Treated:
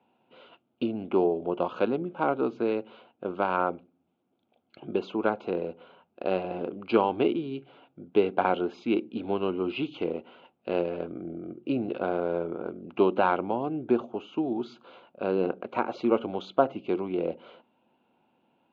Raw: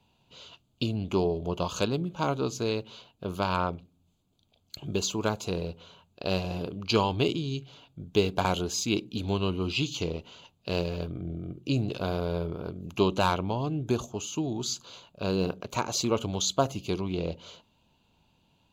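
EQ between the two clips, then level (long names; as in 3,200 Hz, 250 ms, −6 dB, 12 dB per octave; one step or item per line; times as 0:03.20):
loudspeaker in its box 220–2,700 Hz, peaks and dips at 240 Hz +8 dB, 350 Hz +8 dB, 520 Hz +7 dB, 770 Hz +8 dB, 1,400 Hz +7 dB, 2,100 Hz +3 dB
−3.0 dB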